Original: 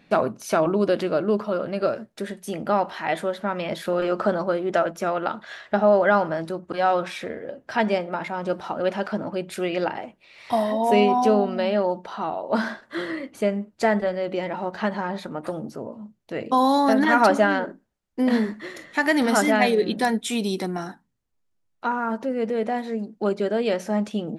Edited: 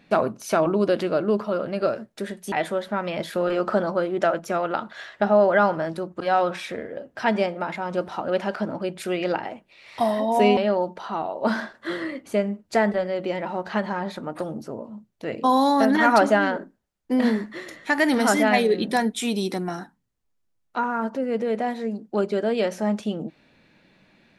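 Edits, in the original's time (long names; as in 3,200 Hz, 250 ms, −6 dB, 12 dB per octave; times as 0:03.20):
0:02.52–0:03.04: remove
0:11.09–0:11.65: remove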